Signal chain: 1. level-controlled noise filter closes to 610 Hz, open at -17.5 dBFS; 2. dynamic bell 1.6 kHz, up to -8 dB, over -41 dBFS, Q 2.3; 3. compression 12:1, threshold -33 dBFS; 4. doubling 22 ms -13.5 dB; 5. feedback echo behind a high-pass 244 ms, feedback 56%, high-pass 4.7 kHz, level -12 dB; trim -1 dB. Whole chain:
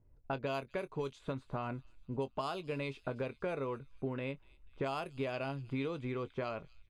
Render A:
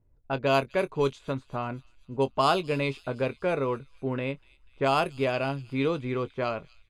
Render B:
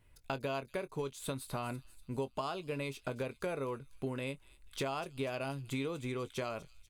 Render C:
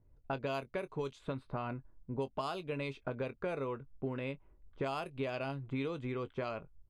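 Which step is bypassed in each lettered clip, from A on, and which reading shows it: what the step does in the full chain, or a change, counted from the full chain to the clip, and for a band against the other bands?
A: 3, mean gain reduction 7.5 dB; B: 1, 4 kHz band +3.5 dB; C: 5, echo-to-direct -26.5 dB to none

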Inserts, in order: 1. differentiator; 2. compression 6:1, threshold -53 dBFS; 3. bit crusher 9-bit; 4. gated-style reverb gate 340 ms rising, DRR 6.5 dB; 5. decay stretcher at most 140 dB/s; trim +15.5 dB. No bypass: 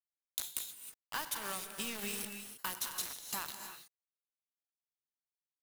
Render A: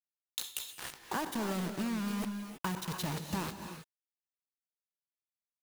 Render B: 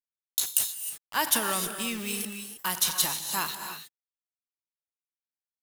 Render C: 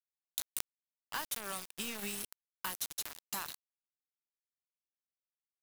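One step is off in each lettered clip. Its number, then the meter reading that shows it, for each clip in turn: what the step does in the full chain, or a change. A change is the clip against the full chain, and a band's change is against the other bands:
1, 125 Hz band +15.0 dB; 2, mean gain reduction 10.0 dB; 4, momentary loudness spread change -1 LU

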